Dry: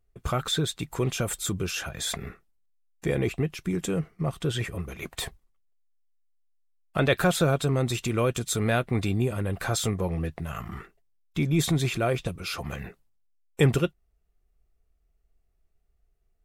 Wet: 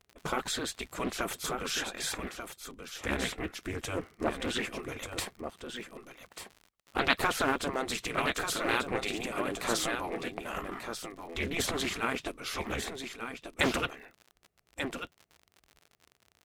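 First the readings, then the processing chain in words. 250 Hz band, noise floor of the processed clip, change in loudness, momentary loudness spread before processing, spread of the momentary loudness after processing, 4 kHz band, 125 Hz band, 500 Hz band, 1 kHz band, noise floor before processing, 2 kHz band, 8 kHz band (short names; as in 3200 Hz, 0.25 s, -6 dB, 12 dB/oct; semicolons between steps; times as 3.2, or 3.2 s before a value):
-7.5 dB, -71 dBFS, -5.5 dB, 12 LU, 13 LU, -1.5 dB, -17.5 dB, -6.5 dB, +0.5 dB, -70 dBFS, +0.5 dB, -3.5 dB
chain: on a send: echo 1.189 s -8 dB; on the sum: crackle 70/s -42 dBFS; spectral gate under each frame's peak -10 dB weak; high shelf 6000 Hz -5 dB; Doppler distortion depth 0.4 ms; gain +2.5 dB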